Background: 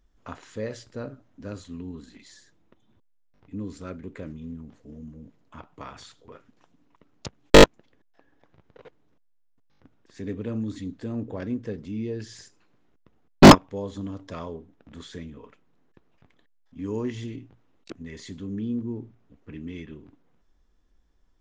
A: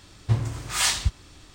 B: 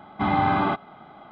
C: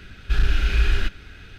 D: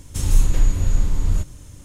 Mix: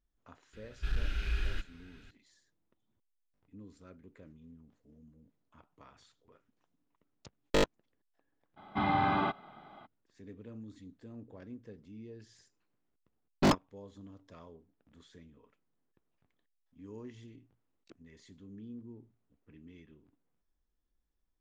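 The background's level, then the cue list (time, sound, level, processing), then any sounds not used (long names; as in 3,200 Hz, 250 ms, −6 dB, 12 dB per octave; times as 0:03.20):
background −17 dB
0:00.53: mix in C −14 dB
0:08.56: mix in B −8 dB, fades 0.02 s + high-shelf EQ 2,700 Hz +5.5 dB
not used: A, D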